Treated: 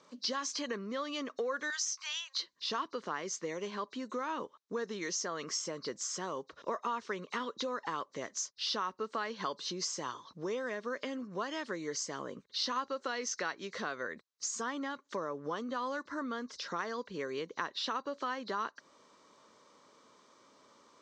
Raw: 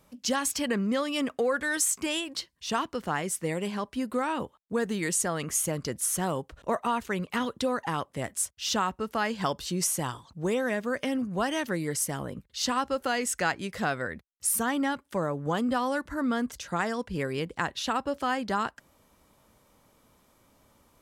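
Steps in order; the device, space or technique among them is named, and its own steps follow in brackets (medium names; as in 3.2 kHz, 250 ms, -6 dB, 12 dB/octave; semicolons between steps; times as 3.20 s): 1.70–2.40 s: Bessel high-pass 1.5 kHz, order 8; hearing aid with frequency lowering (knee-point frequency compression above 3.7 kHz 1.5:1; compression 3:1, threshold -38 dBFS, peak gain reduction 12.5 dB; cabinet simulation 300–6300 Hz, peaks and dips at 420 Hz +3 dB, 760 Hz -7 dB, 1.1 kHz +6 dB, 2.6 kHz -4 dB, 4.1 kHz +4 dB, 6.1 kHz +4 dB); trim +2 dB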